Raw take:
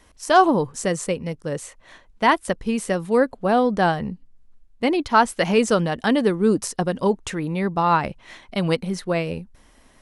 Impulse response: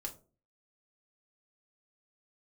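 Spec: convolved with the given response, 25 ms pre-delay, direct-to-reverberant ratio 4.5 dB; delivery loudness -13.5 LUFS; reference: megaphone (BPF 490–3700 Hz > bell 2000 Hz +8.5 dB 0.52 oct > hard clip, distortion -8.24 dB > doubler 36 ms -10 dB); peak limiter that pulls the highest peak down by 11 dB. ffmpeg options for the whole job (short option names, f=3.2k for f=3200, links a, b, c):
-filter_complex "[0:a]alimiter=limit=-14.5dB:level=0:latency=1,asplit=2[a][b];[1:a]atrim=start_sample=2205,adelay=25[c];[b][c]afir=irnorm=-1:irlink=0,volume=-2.5dB[d];[a][d]amix=inputs=2:normalize=0,highpass=490,lowpass=3.7k,equalizer=f=2k:t=o:w=0.52:g=8.5,asoftclip=type=hard:threshold=-23.5dB,asplit=2[e][f];[f]adelay=36,volume=-10dB[g];[e][g]amix=inputs=2:normalize=0,volume=15.5dB"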